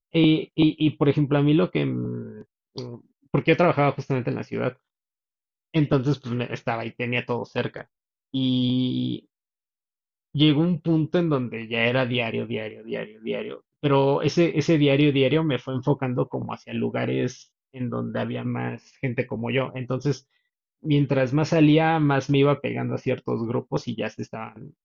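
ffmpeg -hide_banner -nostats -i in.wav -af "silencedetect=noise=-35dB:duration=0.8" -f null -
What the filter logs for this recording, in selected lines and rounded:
silence_start: 4.72
silence_end: 5.74 | silence_duration: 1.03
silence_start: 9.19
silence_end: 10.35 | silence_duration: 1.16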